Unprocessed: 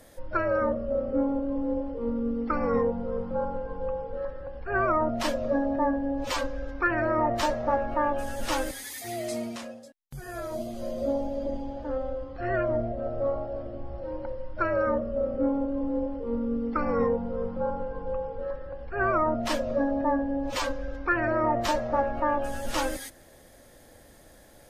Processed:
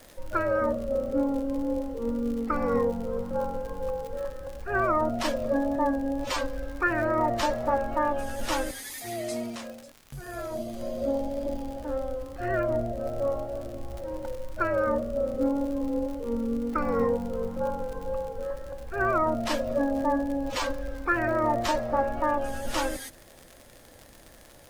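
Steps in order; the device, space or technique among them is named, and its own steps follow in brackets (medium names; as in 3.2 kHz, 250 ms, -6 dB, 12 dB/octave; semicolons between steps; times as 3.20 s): vinyl LP (wow and flutter 21 cents; crackle 86 per s -35 dBFS; pink noise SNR 32 dB)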